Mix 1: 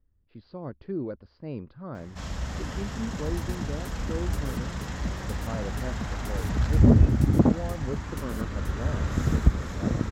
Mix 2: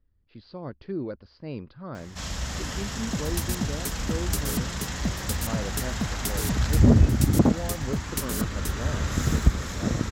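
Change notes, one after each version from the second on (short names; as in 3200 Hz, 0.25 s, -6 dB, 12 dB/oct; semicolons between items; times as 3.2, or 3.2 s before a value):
second sound +6.5 dB; master: add high shelf 2400 Hz +11 dB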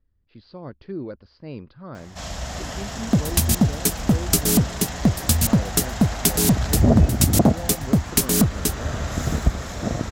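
first sound: add bell 680 Hz +10.5 dB 0.54 oct; second sound +12.0 dB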